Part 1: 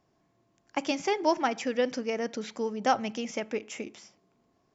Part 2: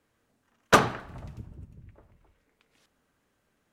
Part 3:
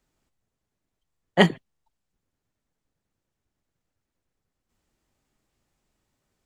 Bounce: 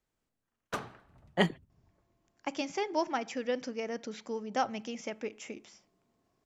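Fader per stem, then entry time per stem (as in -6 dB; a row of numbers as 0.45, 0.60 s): -5.5, -18.0, -9.5 dB; 1.70, 0.00, 0.00 s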